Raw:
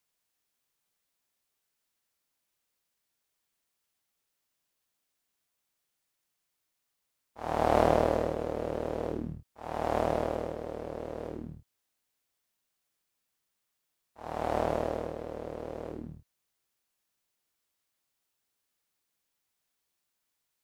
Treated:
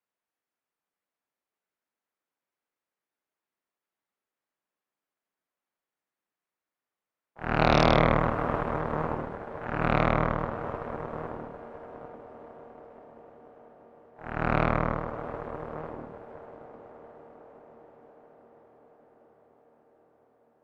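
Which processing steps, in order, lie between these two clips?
three-band isolator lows -15 dB, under 170 Hz, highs -18 dB, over 2.2 kHz; echo that smears into a reverb 688 ms, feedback 69%, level -10 dB; Chebyshev shaper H 3 -29 dB, 4 -22 dB, 8 -9 dB, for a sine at -9.5 dBFS; MP3 64 kbps 44.1 kHz

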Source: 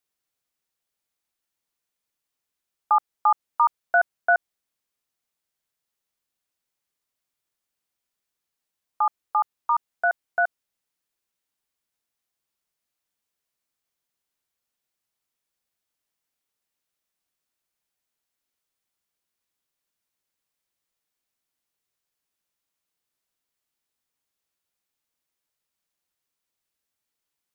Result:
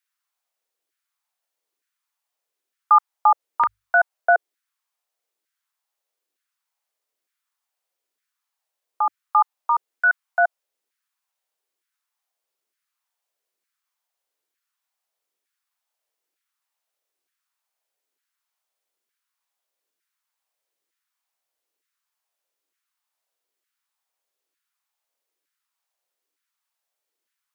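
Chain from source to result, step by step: LFO high-pass saw down 1.1 Hz 320–1700 Hz; hum notches 50/100 Hz

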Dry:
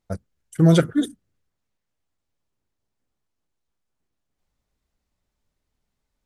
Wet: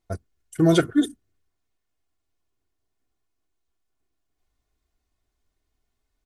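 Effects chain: comb 2.8 ms, depth 54%; trim -1 dB

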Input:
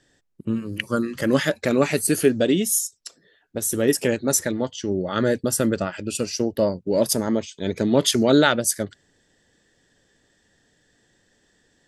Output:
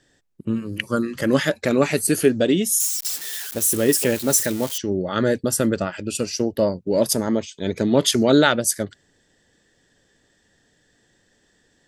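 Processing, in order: 2.80–4.78 s: zero-crossing glitches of -20.5 dBFS; trim +1 dB

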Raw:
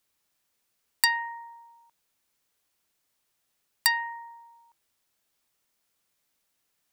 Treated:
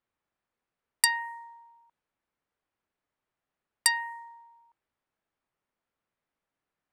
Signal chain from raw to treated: level-controlled noise filter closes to 1.7 kHz, open at -27.5 dBFS; peaking EQ 9.5 kHz +13 dB 0.7 oct; trim -2.5 dB

